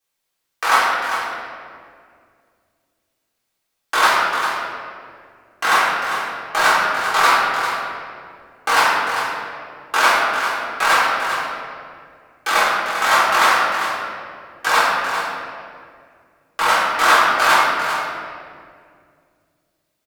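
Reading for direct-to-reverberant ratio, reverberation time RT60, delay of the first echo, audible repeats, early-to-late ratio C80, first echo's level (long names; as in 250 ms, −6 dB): −10.0 dB, 2.2 s, 397 ms, 1, 0.0 dB, −8.0 dB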